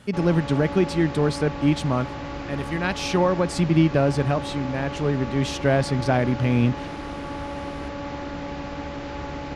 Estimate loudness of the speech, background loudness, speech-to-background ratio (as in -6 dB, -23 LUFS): -23.0 LUFS, -32.5 LUFS, 9.5 dB